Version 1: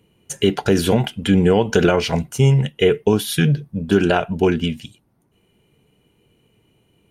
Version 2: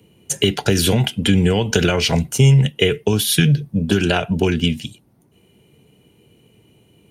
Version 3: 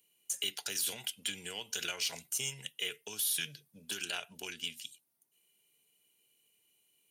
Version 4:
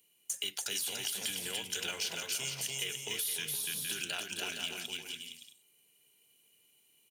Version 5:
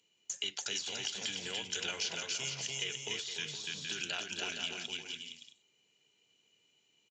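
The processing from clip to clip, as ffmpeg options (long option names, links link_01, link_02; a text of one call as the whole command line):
ffmpeg -i in.wav -filter_complex "[0:a]highpass=66,equalizer=frequency=1300:width_type=o:width=1.6:gain=-5.5,acrossover=split=120|1400|4200[link_01][link_02][link_03][link_04];[link_02]acompressor=threshold=-24dB:ratio=6[link_05];[link_01][link_05][link_03][link_04]amix=inputs=4:normalize=0,volume=7.5dB" out.wav
ffmpeg -i in.wav -af "aderivative,alimiter=limit=-18.5dB:level=0:latency=1:release=18,aeval=exprs='0.119*(cos(1*acos(clip(val(0)/0.119,-1,1)))-cos(1*PI/2))+0.00376*(cos(7*acos(clip(val(0)/0.119,-1,1)))-cos(7*PI/2))':channel_layout=same,volume=-4.5dB" out.wav
ffmpeg -i in.wav -af "aecho=1:1:290|464|568.4|631|668.6:0.631|0.398|0.251|0.158|0.1,acrusher=bits=5:mode=log:mix=0:aa=0.000001,acompressor=threshold=-35dB:ratio=4,volume=2.5dB" out.wav
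ffmpeg -i in.wav -af "aresample=16000,aresample=44100" out.wav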